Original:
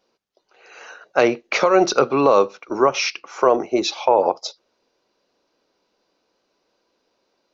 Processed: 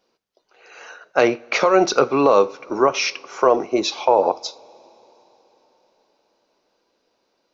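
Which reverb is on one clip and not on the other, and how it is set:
coupled-rooms reverb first 0.33 s, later 4.6 s, from −22 dB, DRR 14.5 dB

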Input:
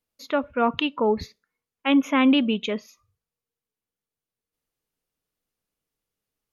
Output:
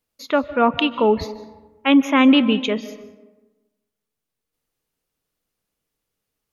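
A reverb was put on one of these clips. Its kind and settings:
comb and all-pass reverb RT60 1.2 s, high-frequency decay 0.5×, pre-delay 110 ms, DRR 15 dB
level +5 dB

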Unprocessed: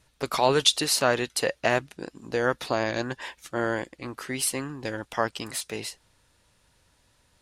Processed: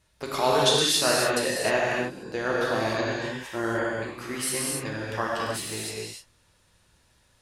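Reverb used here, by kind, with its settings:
reverb whose tail is shaped and stops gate 330 ms flat, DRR −5 dB
level −5 dB

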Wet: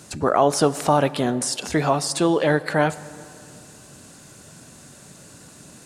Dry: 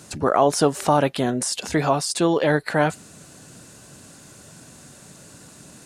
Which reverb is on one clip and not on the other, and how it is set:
dense smooth reverb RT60 2.5 s, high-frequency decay 0.55×, DRR 16 dB

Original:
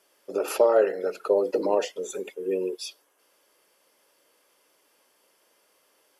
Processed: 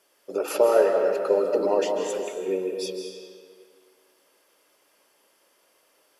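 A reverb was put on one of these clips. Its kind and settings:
comb and all-pass reverb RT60 1.9 s, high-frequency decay 0.8×, pre-delay 115 ms, DRR 3 dB

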